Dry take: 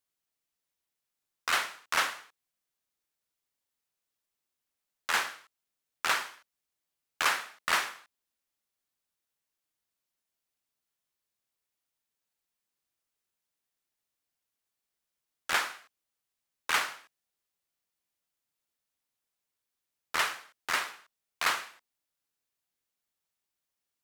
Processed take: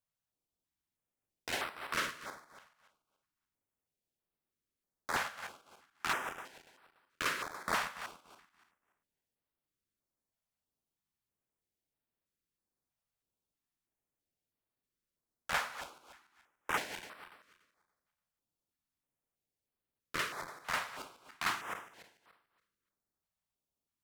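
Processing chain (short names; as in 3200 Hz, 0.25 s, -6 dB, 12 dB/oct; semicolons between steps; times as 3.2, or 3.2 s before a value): regenerating reverse delay 0.144 s, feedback 49%, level -8.5 dB; tilt shelf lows +6.5 dB, about 830 Hz; in parallel at -4 dB: short-mantissa float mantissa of 2-bit; on the sum: stepped notch 3.1 Hz 340–6600 Hz; gain -6 dB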